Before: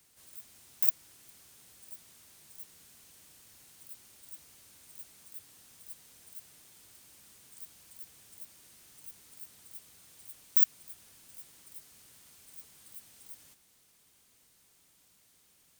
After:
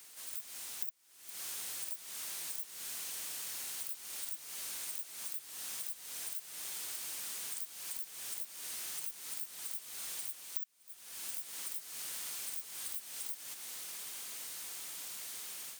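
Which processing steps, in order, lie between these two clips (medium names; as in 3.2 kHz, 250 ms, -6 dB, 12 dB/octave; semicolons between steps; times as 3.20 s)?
level rider gain up to 11 dB; high-pass 810 Hz 6 dB/octave; compression 12:1, threshold -49 dBFS, peak gain reduction 35.5 dB; trim +11 dB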